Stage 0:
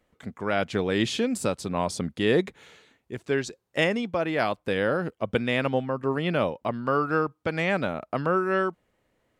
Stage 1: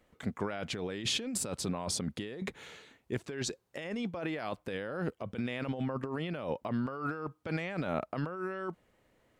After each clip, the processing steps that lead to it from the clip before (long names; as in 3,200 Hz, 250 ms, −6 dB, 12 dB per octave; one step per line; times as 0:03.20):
compressor whose output falls as the input rises −32 dBFS, ratio −1
level −4 dB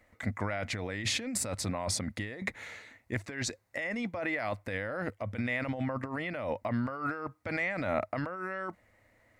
thirty-one-band graphic EQ 100 Hz +9 dB, 160 Hz −10 dB, 400 Hz −10 dB, 630 Hz +4 dB, 2,000 Hz +11 dB, 3,150 Hz −7 dB
level +2 dB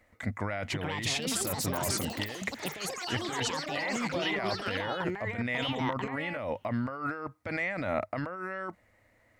delay with pitch and tempo change per echo 566 ms, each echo +7 semitones, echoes 3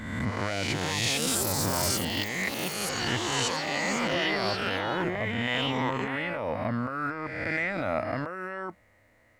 peak hold with a rise ahead of every peak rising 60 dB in 1.30 s